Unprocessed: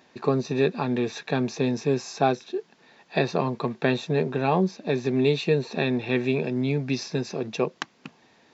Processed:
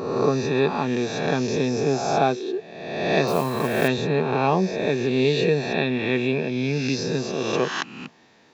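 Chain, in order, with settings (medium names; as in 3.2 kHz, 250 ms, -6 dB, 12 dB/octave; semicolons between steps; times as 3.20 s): reverse spectral sustain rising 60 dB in 1.23 s; 3.27–3.88 s: modulation noise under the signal 19 dB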